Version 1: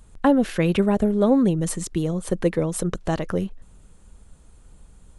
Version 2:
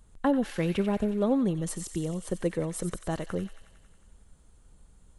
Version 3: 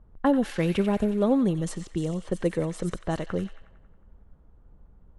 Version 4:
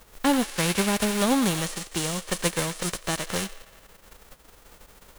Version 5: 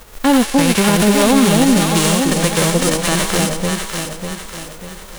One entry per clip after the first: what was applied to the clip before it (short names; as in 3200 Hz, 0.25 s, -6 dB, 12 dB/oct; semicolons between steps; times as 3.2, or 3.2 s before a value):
notch 2500 Hz, Q 23; thin delay 91 ms, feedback 70%, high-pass 1800 Hz, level -8.5 dB; gain -7.5 dB
low-pass opened by the level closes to 1000 Hz, open at -24.5 dBFS; gain +3 dB
spectral whitening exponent 0.3
echo with dull and thin repeats by turns 0.298 s, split 810 Hz, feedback 67%, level -2 dB; harmonic-percussive split harmonic +5 dB; maximiser +10 dB; gain -1.5 dB